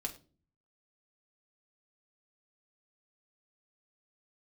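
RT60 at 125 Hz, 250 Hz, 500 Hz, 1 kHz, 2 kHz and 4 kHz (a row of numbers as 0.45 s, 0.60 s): 0.80 s, 0.65 s, 0.45 s, 0.30 s, 0.25 s, 0.30 s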